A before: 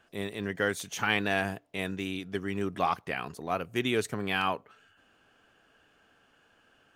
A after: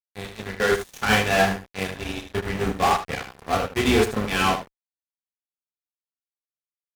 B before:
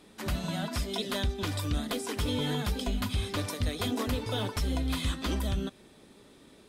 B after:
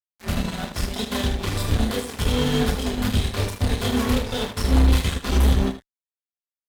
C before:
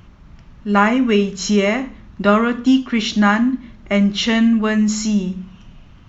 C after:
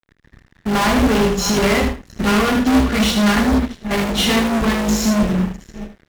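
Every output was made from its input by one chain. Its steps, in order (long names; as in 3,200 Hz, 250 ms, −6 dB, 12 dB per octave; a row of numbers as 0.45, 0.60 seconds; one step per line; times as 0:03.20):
sub-octave generator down 2 octaves, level −6 dB
in parallel at −10 dB: sample-and-hold swept by an LFO 32×, swing 60% 0.53 Hz
on the sum: mains-hum notches 60/120/180/240/300 Hz
dynamic equaliser 920 Hz, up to +3 dB, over −29 dBFS, Q 0.85
multi-voice chorus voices 4, 0.33 Hz, delay 30 ms, depth 2.6 ms
notch comb filter 310 Hz
steady tone 1,800 Hz −53 dBFS
single-tap delay 652 ms −22 dB
fuzz pedal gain 29 dB, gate −38 dBFS
ambience of single reflections 27 ms −17.5 dB, 77 ms −7 dB
expander for the loud parts 1.5 to 1, over −30 dBFS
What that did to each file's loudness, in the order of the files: +8.0, +9.0, 0.0 LU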